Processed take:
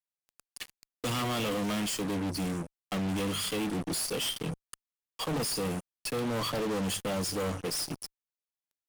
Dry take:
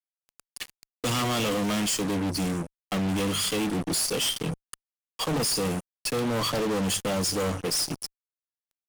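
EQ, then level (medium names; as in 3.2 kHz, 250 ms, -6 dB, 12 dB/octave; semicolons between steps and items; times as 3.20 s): dynamic bell 6.5 kHz, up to -4 dB, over -39 dBFS, Q 1.3; -4.5 dB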